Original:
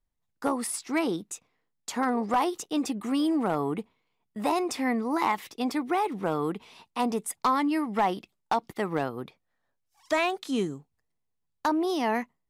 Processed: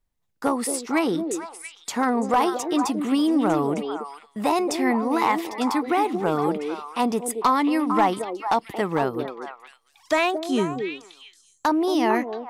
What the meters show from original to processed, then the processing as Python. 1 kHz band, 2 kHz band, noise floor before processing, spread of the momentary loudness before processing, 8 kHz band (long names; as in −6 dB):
+5.5 dB, +5.0 dB, −78 dBFS, 10 LU, +4.5 dB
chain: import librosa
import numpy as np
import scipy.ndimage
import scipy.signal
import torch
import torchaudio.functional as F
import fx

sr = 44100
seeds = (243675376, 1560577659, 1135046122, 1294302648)

y = fx.echo_stepped(x, sr, ms=226, hz=410.0, octaves=1.4, feedback_pct=70, wet_db=-3.0)
y = y * 10.0 ** (4.5 / 20.0)